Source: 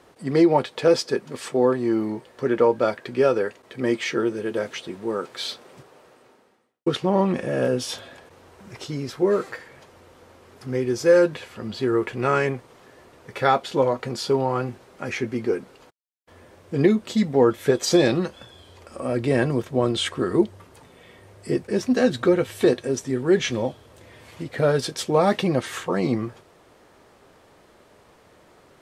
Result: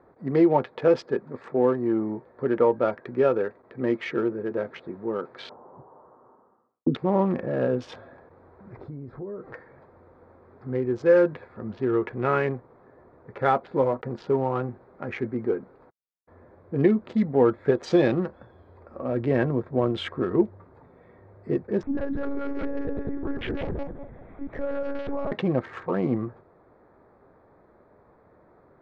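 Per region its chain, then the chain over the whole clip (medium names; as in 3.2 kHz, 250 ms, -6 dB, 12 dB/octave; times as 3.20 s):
5.49–6.95 s: distance through air 490 m + touch-sensitive low-pass 250–1200 Hz down, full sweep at -28.5 dBFS
8.77–9.54 s: tilt EQ -2.5 dB/octave + compression 4:1, threshold -34 dBFS
12.53–14.54 s: block-companded coder 5-bit + treble shelf 2 kHz -3.5 dB
21.83–25.32 s: backward echo that repeats 100 ms, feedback 57%, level -2.5 dB + compression 16:1, threshold -21 dBFS + monotone LPC vocoder at 8 kHz 280 Hz
whole clip: local Wiener filter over 15 samples; low-pass 2.5 kHz 12 dB/octave; trim -2 dB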